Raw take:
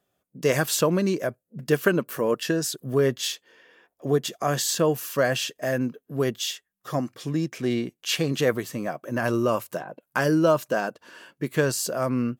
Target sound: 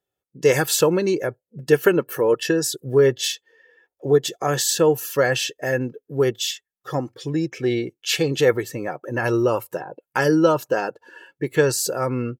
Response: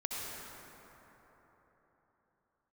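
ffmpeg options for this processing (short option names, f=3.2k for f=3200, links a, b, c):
-af "bandreject=f=1.2k:w=14,afftdn=nr=13:nf=-46,aecho=1:1:2.3:0.57,volume=3dB"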